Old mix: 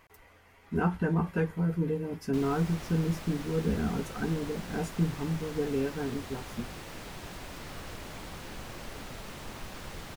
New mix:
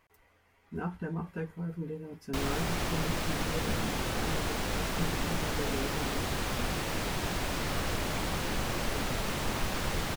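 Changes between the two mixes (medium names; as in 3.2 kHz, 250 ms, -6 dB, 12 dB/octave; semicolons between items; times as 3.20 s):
speech -8.0 dB; background +10.0 dB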